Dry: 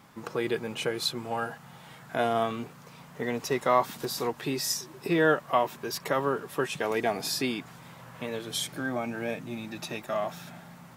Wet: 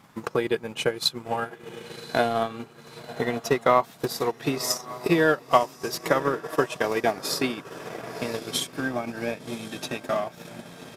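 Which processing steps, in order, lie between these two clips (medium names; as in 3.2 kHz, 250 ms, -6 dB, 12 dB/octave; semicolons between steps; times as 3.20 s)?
resampled via 32 kHz; echo that smears into a reverb 1094 ms, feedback 52%, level -11 dB; transient shaper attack +7 dB, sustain -9 dB; trim +1 dB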